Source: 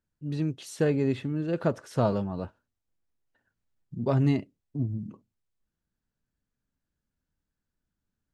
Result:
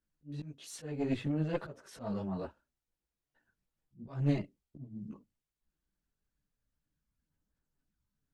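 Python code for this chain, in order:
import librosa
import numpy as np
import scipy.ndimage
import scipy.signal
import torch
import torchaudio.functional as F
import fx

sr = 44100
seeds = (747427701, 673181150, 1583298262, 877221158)

y = fx.auto_swell(x, sr, attack_ms=358.0)
y = fx.chorus_voices(y, sr, voices=6, hz=1.1, base_ms=17, depth_ms=3.7, mix_pct=60)
y = fx.cheby_harmonics(y, sr, harmonics=(2,), levels_db=(-7,), full_scale_db=-18.5)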